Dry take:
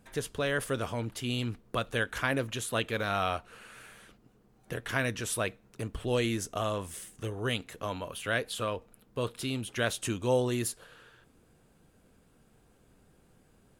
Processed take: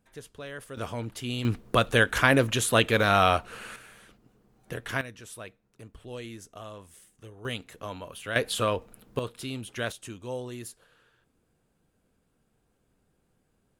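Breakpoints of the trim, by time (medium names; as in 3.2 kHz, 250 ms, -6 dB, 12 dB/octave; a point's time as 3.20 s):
-10 dB
from 0.77 s 0 dB
from 1.45 s +9 dB
from 3.76 s +0.5 dB
from 5.01 s -11 dB
from 7.45 s -2.5 dB
from 8.36 s +6.5 dB
from 9.19 s -2 dB
from 9.92 s -8.5 dB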